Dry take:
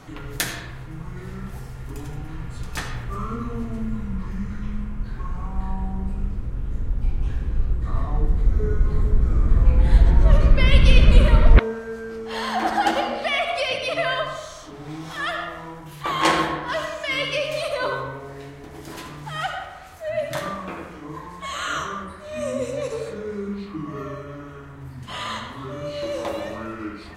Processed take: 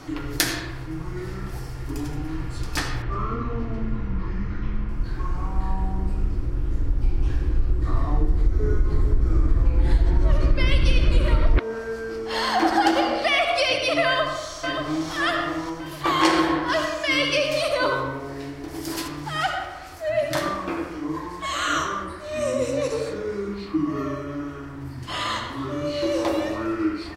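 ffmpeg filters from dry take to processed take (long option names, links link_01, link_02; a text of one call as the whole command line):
ffmpeg -i in.wav -filter_complex "[0:a]asettb=1/sr,asplit=3[link_01][link_02][link_03];[link_01]atrim=end=3.024[link_04];[link_02]atrim=start=3.02:end=4.89,asetpts=PTS-STARTPTS,afade=type=in:duration=0.004:curve=qsin,afade=type=out:start_time=1.866:duration=0.004:curve=qsin,lowpass=3500[link_05];[link_03]atrim=start=4.886[link_06];[link_04][link_05]acrossfade=duration=0.004:curve1=hsin:curve2=qsin[link_07];[link_07][link_06]acrossfade=duration=0.004:curve1=qsin:curve2=hsin,asplit=2[link_08][link_09];[link_09]afade=type=in:start_time=14.05:duration=0.01,afade=type=out:start_time=15.11:duration=0.01,aecho=0:1:580|1160|1740|2320|2900:0.473151|0.212918|0.0958131|0.0431159|0.0194022[link_10];[link_08][link_10]amix=inputs=2:normalize=0,asettb=1/sr,asplit=3[link_11][link_12][link_13];[link_11]atrim=end=18.684[link_14];[link_12]atrim=start=18.68:end=19.08,asetpts=PTS-STARTPTS,afade=type=in:duration=0.004:curve=qsin,afade=type=out:start_time=0.396:duration=0.004:curve=qsin,highshelf=frequency=5900:gain=9.5[link_15];[link_13]atrim=start=19.076[link_16];[link_14][link_15]acrossfade=duration=0.004:curve1=hsin:curve2=qsin[link_17];[link_17][link_16]acrossfade=duration=0.004:curve1=qsin:curve2=hsin,superequalizer=6b=2.82:14b=1.78,acompressor=threshold=-17dB:ratio=5,equalizer=frequency=210:width_type=o:width=0.78:gain=-6,volume=3dB" out.wav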